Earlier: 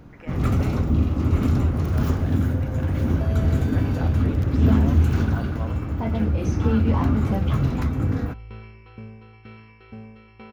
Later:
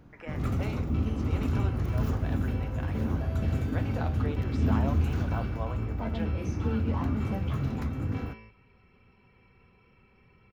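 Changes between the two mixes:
first sound -8.5 dB; second sound: entry -2.25 s

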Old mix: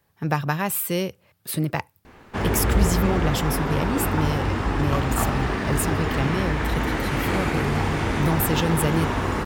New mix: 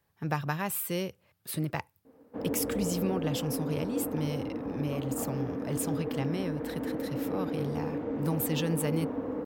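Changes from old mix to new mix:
speech -7.5 dB; background: add double band-pass 370 Hz, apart 0.72 oct

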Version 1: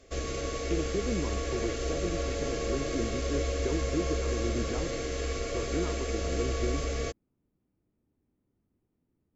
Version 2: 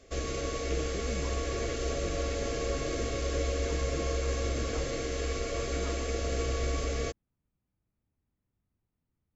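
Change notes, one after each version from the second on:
speech: add bell 330 Hz -13 dB 1.8 oct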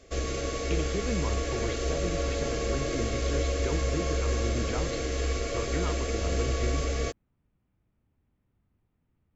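speech +9.0 dB; reverb: on, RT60 1.8 s

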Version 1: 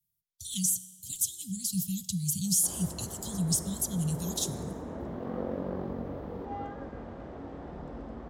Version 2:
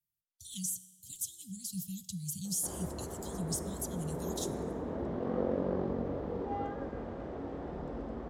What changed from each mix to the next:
speech -8.5 dB; master: add bell 420 Hz +4 dB 0.95 oct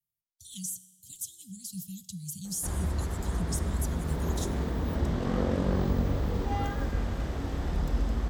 background: remove band-pass 480 Hz, Q 1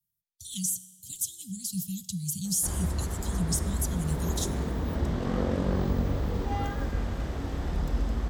speech +6.5 dB

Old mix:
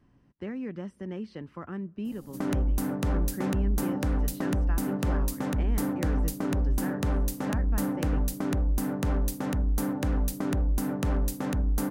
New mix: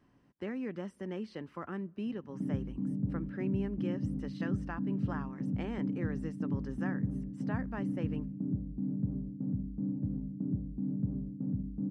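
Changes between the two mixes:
speech: add low shelf 140 Hz -11 dB; background: add Butterworth band-pass 160 Hz, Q 1.2

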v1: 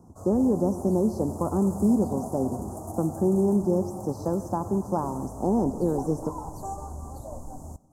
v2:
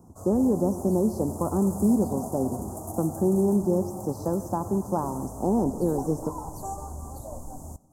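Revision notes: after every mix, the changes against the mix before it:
background: add high shelf 8400 Hz +9 dB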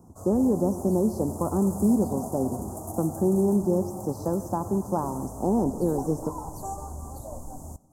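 none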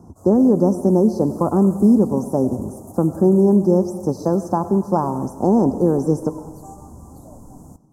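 speech +8.5 dB; background -6.0 dB

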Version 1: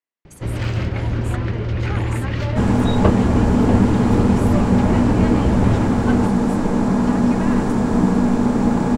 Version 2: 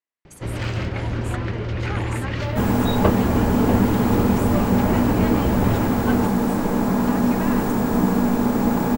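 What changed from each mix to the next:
second sound: remove LPF 9200 Hz 24 dB/oct; master: add low shelf 270 Hz -5 dB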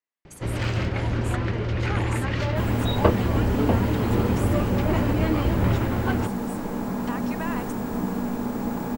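second sound -8.5 dB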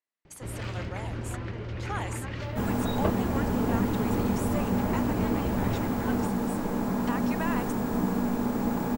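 first sound -9.5 dB

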